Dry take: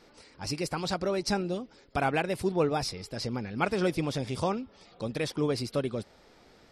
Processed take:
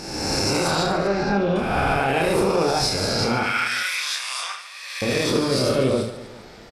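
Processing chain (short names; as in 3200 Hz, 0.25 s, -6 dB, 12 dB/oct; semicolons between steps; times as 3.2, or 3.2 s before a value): spectral swells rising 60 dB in 1.47 s; 3.43–5.02 Chebyshev high-pass 1600 Hz, order 3; limiter -22.5 dBFS, peak gain reduction 11 dB; 0.83–1.56 LPF 2500 Hz 12 dB/oct; reverse bouncing-ball echo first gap 30 ms, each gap 1.5×, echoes 5; gain +9 dB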